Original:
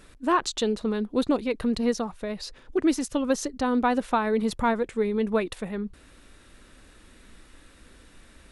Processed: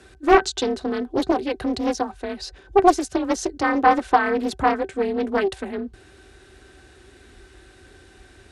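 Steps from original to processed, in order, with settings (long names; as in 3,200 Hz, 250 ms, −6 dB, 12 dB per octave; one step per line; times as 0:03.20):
high-shelf EQ 4,200 Hz +11 dB
hollow resonant body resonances 350/720/1,500 Hz, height 16 dB, ringing for 90 ms
frequency shifter +34 Hz
high-frequency loss of the air 61 metres
highs frequency-modulated by the lows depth 0.73 ms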